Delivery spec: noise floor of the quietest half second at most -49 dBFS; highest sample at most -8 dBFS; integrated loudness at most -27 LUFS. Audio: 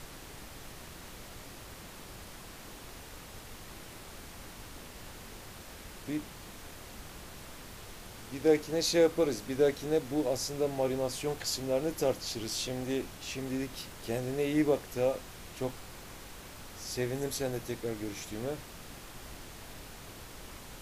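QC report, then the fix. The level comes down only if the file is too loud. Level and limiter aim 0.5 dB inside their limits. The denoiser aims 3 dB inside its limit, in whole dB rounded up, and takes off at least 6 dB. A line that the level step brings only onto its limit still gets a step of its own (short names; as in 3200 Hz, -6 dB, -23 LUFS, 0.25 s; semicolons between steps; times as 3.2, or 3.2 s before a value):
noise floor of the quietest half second -47 dBFS: fail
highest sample -13.0 dBFS: OK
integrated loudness -32.5 LUFS: OK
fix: denoiser 6 dB, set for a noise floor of -47 dBFS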